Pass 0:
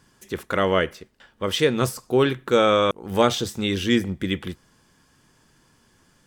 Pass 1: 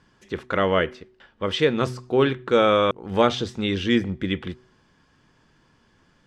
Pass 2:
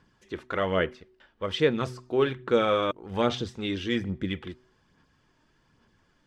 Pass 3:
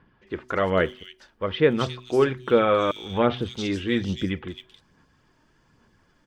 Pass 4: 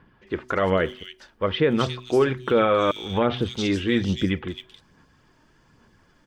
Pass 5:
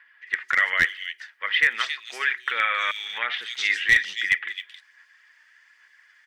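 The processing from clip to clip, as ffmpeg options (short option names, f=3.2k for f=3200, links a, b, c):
-af "lowpass=4.1k,bandreject=f=125:t=h:w=4,bandreject=f=250:t=h:w=4,bandreject=f=375:t=h:w=4"
-af "aphaser=in_gain=1:out_gain=1:delay=3.3:decay=0.36:speed=1.2:type=sinusoidal,volume=-6.5dB"
-filter_complex "[0:a]acrossover=split=3400[a][b];[b]adelay=270[c];[a][c]amix=inputs=2:normalize=0,volume=4dB"
-af "alimiter=limit=-14dB:level=0:latency=1:release=80,volume=3.5dB"
-af "highpass=f=1.9k:t=q:w=7.2,aeval=exprs='clip(val(0),-1,0.266)':c=same"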